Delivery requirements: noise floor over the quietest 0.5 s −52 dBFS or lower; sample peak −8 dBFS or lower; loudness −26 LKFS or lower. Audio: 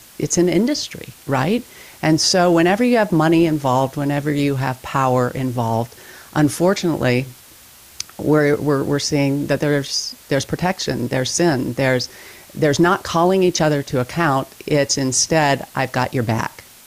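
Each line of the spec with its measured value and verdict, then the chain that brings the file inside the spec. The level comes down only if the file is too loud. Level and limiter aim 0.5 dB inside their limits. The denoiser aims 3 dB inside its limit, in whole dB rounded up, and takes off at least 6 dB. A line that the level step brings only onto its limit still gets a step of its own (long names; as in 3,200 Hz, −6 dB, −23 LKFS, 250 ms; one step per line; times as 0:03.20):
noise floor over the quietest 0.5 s −45 dBFS: out of spec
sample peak −5.5 dBFS: out of spec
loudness −18.0 LKFS: out of spec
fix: level −8.5 dB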